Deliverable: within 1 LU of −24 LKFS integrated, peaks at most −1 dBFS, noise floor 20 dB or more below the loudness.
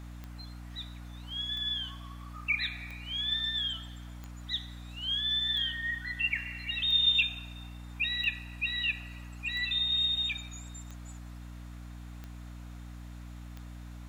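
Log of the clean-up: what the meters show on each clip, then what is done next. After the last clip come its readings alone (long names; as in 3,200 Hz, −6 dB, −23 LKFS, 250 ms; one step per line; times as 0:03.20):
number of clicks 11; mains hum 60 Hz; hum harmonics up to 300 Hz; level of the hum −42 dBFS; integrated loudness −30.0 LKFS; sample peak −14.0 dBFS; target loudness −24.0 LKFS
→ click removal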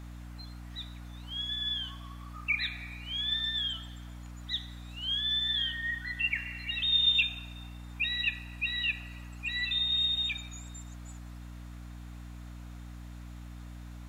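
number of clicks 0; mains hum 60 Hz; hum harmonics up to 300 Hz; level of the hum −42 dBFS
→ hum removal 60 Hz, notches 5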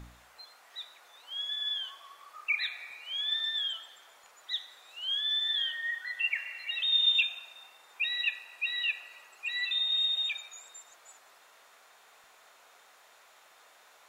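mains hum none found; integrated loudness −30.0 LKFS; sample peak −14.5 dBFS; target loudness −24.0 LKFS
→ level +6 dB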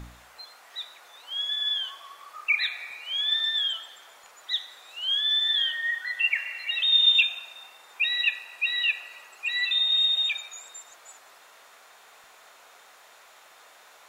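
integrated loudness −24.0 LKFS; sample peak −8.5 dBFS; background noise floor −54 dBFS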